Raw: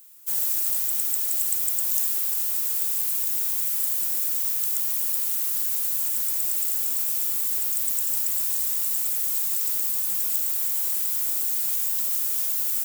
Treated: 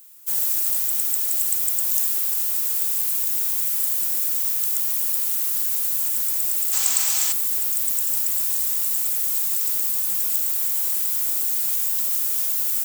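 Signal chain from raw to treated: time-frequency box 6.73–7.32 s, 630–8400 Hz +11 dB; trim +2.5 dB

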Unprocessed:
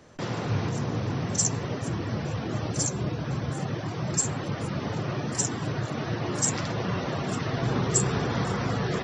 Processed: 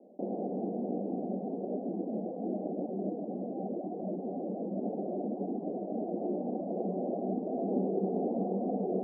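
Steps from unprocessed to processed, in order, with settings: Chebyshev band-pass 190–760 Hz, order 5

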